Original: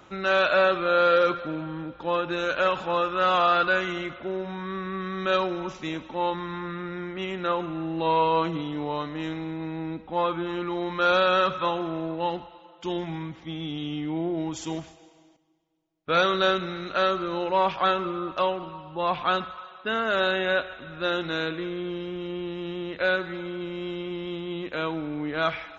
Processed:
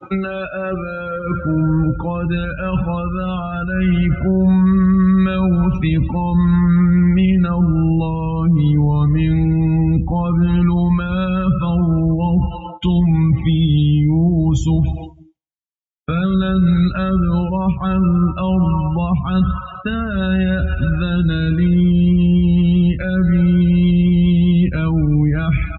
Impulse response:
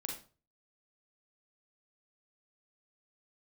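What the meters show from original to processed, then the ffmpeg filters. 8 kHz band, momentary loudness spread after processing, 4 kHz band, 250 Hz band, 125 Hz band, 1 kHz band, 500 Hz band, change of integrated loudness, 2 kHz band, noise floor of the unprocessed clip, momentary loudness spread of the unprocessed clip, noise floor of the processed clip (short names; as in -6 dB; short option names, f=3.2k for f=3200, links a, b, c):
n/a, 8 LU, -1.0 dB, +17.5 dB, +25.0 dB, -1.5 dB, -0.5 dB, +10.5 dB, -1.0 dB, -52 dBFS, 12 LU, -33 dBFS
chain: -filter_complex "[0:a]asubboost=boost=10.5:cutoff=110,areverse,acompressor=threshold=-32dB:ratio=6,areverse,agate=range=-33dB:threshold=-49dB:ratio=3:detection=peak,equalizer=f=2.6k:w=1.4:g=4,asplit=2[a][b];[b]aecho=0:1:108|216|324:0.0944|0.0359|0.0136[c];[a][c]amix=inputs=2:normalize=0,acrossover=split=230[d][e];[e]acompressor=threshold=-50dB:ratio=10[f];[d][f]amix=inputs=2:normalize=0,asplit=2[g][h];[h]adelay=16,volume=-9dB[i];[g][i]amix=inputs=2:normalize=0,afftdn=nr=35:nf=-51,highpass=60,alimiter=level_in=32dB:limit=-1dB:release=50:level=0:latency=1,volume=-6.5dB"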